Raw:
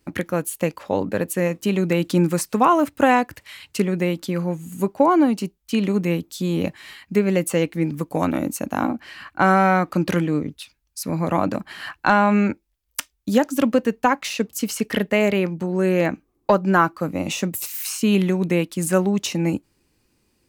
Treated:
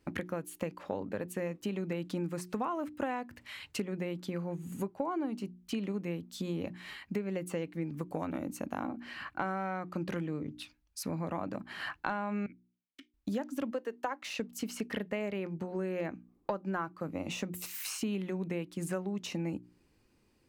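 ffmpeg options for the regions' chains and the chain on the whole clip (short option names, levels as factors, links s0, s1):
-filter_complex "[0:a]asettb=1/sr,asplit=3[s0][s1][s2];[s0]atrim=end=12.464[s3];[s1]atrim=start=12.46:end=13.14,asetpts=PTS-STARTPTS,afade=t=in:d=0.004:c=qsin,afade=t=out:st=0.676:d=0.004:c=qsin,equalizer=f=110:w=0.33:g=-11.5,aeval=exprs='(mod(5.31*val(0)+1,2)-1)/5.31':c=same,asplit=3[s4][s5][s6];[s4]bandpass=f=270:t=q:w=8,volume=1[s7];[s5]bandpass=f=2290:t=q:w=8,volume=0.501[s8];[s6]bandpass=f=3010:t=q:w=8,volume=0.355[s9];[s7][s8][s9]amix=inputs=3:normalize=0[s10];[s2]atrim=start=13.136[s11];[s3][s10]acrossfade=d=0.004:c1=hsin:c2=qsin[s12];[s12][s11]acrossfade=d=0.004:c1=qsin:c2=hsin,asettb=1/sr,asplit=3[s13][s14][s15];[s13]atrim=end=13.734[s16];[s14]atrim=start=13.73:end=14.22,asetpts=PTS-STARTPTS,afade=t=in:d=0.004:c=qsin,afade=t=out:st=0.486:d=0.004:c=qsin,highpass=f=320:w=0.5412,highpass=f=320:w=1.3066,equalizer=f=2400:t=o:w=0.24:g=-5[s17];[s15]atrim=start=14.216[s18];[s16][s17]acrossfade=d=0.004:c1=hsin:c2=qsin[s19];[s19][s18]acrossfade=d=0.004:c1=qsin:c2=hsin,highshelf=f=4500:g=-9.5,bandreject=f=60:t=h:w=6,bandreject=f=120:t=h:w=6,bandreject=f=180:t=h:w=6,bandreject=f=240:t=h:w=6,bandreject=f=300:t=h:w=6,bandreject=f=360:t=h:w=6,acompressor=threshold=0.0251:ratio=4,volume=0.75"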